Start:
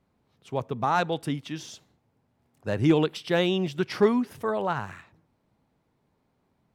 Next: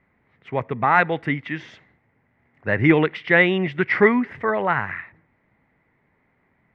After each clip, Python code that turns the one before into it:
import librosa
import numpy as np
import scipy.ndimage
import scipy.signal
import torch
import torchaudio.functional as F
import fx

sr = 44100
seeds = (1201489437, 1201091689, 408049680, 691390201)

y = fx.lowpass_res(x, sr, hz=2000.0, q=7.7)
y = y * 10.0 ** (4.0 / 20.0)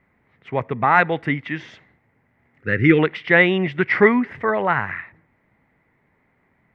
y = fx.spec_box(x, sr, start_s=2.6, length_s=0.39, low_hz=530.0, high_hz=1200.0, gain_db=-17)
y = y * 10.0 ** (1.5 / 20.0)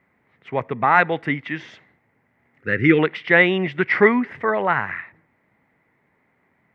y = fx.highpass(x, sr, hz=150.0, slope=6)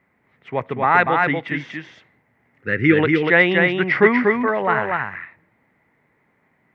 y = x + 10.0 ** (-3.5 / 20.0) * np.pad(x, (int(240 * sr / 1000.0), 0))[:len(x)]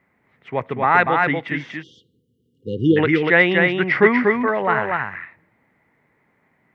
y = fx.spec_erase(x, sr, start_s=1.83, length_s=1.14, low_hz=520.0, high_hz=2800.0)